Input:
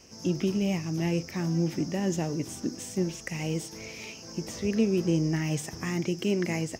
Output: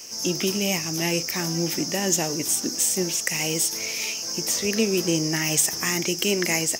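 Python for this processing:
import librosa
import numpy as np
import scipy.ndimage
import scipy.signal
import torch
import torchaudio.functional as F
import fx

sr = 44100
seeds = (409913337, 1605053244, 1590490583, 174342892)

y = fx.riaa(x, sr, side='recording')
y = y * 10.0 ** (7.5 / 20.0)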